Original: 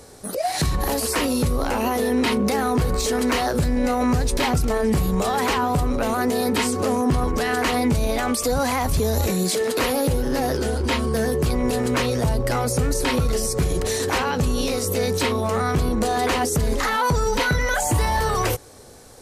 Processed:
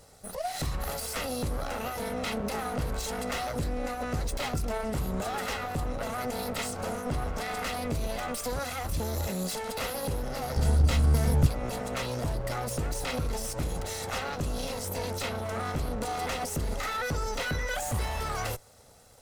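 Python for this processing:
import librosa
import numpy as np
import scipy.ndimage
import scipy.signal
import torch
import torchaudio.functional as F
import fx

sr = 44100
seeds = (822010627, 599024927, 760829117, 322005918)

y = fx.lower_of_two(x, sr, delay_ms=1.5)
y = fx.bass_treble(y, sr, bass_db=14, treble_db=5, at=(10.56, 11.47))
y = y * librosa.db_to_amplitude(-9.0)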